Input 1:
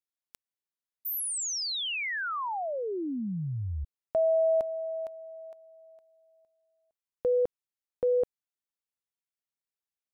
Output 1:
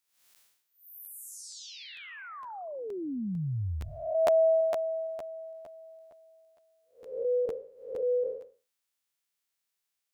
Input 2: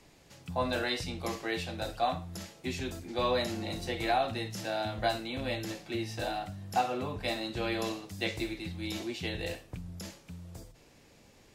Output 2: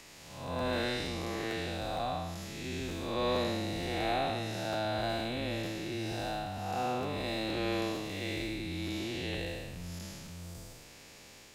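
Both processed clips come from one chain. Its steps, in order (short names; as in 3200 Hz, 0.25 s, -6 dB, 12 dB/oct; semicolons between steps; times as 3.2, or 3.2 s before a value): time blur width 0.287 s; crackling interface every 0.46 s, samples 512, repeat, from 0.58; mismatched tape noise reduction encoder only; gain +2.5 dB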